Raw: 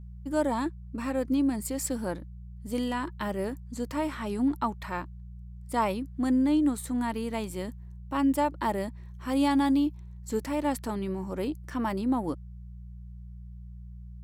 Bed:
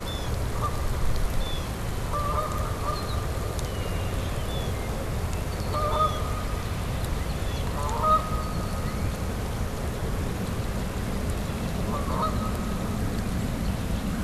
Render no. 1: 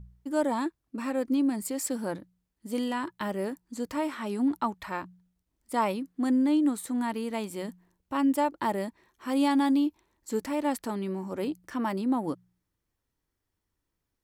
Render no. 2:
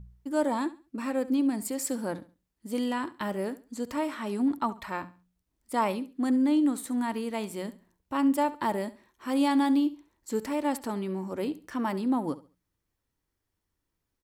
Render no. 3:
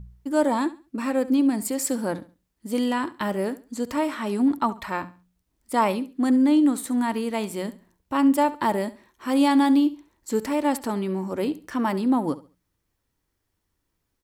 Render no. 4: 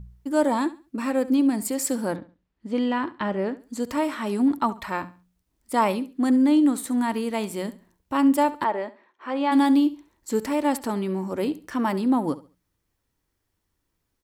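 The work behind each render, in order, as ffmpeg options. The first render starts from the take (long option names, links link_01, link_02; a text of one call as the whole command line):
ffmpeg -i in.wav -af "bandreject=frequency=60:width_type=h:width=4,bandreject=frequency=120:width_type=h:width=4,bandreject=frequency=180:width_type=h:width=4" out.wav
ffmpeg -i in.wav -af "aecho=1:1:69|138|207:0.141|0.0381|0.0103" out.wav
ffmpeg -i in.wav -af "volume=5.5dB" out.wav
ffmpeg -i in.wav -filter_complex "[0:a]asplit=3[link_01][link_02][link_03];[link_01]afade=type=out:start_time=2.15:duration=0.02[link_04];[link_02]lowpass=3300,afade=type=in:start_time=2.15:duration=0.02,afade=type=out:start_time=3.59:duration=0.02[link_05];[link_03]afade=type=in:start_time=3.59:duration=0.02[link_06];[link_04][link_05][link_06]amix=inputs=3:normalize=0,asplit=3[link_07][link_08][link_09];[link_07]afade=type=out:start_time=8.63:duration=0.02[link_10];[link_08]highpass=420,lowpass=2400,afade=type=in:start_time=8.63:duration=0.02,afade=type=out:start_time=9.51:duration=0.02[link_11];[link_09]afade=type=in:start_time=9.51:duration=0.02[link_12];[link_10][link_11][link_12]amix=inputs=3:normalize=0" out.wav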